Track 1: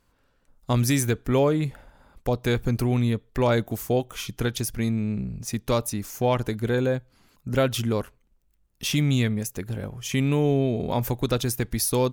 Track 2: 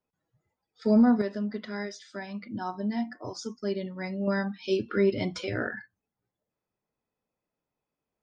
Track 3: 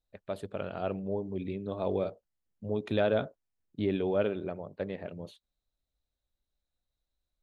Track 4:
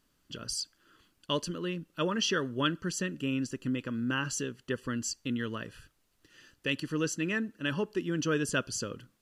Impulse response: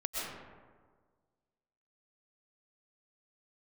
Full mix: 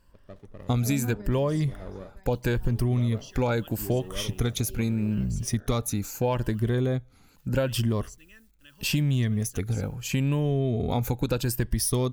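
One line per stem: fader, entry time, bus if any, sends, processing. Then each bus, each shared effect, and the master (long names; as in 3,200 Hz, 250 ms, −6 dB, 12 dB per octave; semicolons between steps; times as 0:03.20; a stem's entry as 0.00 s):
−1.0 dB, 0.00 s, no send, rippled gain that drifts along the octave scale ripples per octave 1.3, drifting +0.78 Hz, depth 9 dB
−0.5 dB, 0.00 s, muted 0:03.50–0:04.58, no send, automatic ducking −22 dB, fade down 1.80 s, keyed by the first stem
−11.5 dB, 0.00 s, no send, windowed peak hold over 17 samples
−9.5 dB, 1.00 s, no send, hold until the input has moved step −49.5 dBFS; first-order pre-emphasis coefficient 0.9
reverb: not used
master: low-shelf EQ 140 Hz +8.5 dB; downward compressor, threshold −21 dBFS, peak gain reduction 7.5 dB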